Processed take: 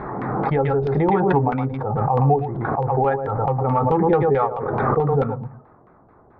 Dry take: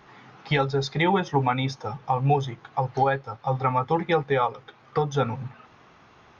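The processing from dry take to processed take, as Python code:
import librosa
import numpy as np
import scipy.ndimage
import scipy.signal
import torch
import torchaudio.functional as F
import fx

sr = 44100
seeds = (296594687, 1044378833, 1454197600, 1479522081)

y = fx.wiener(x, sr, points=15)
y = fx.bass_treble(y, sr, bass_db=-8, treble_db=-1)
y = y + 10.0 ** (-11.0 / 20.0) * np.pad(y, (int(115 * sr / 1000.0), 0))[:len(y)]
y = fx.filter_lfo_lowpass(y, sr, shape='saw_down', hz=4.6, low_hz=560.0, high_hz=2900.0, q=0.94)
y = fx.tilt_eq(y, sr, slope=-2.5)
y = fx.pre_swell(y, sr, db_per_s=25.0)
y = y * librosa.db_to_amplitude(2.0)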